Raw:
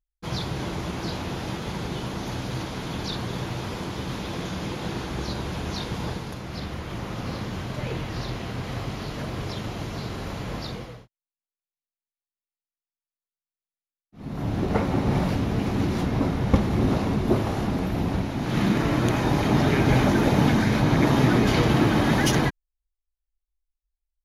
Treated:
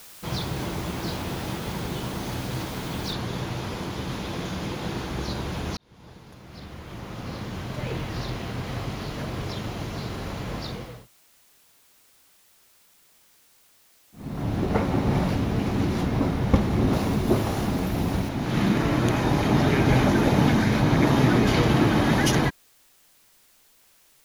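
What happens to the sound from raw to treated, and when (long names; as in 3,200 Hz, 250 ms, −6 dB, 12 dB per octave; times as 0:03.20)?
0:03.13: noise floor change −46 dB −59 dB
0:05.77–0:07.96: fade in
0:16.93–0:18.29: high-shelf EQ 5,600 Hz +8.5 dB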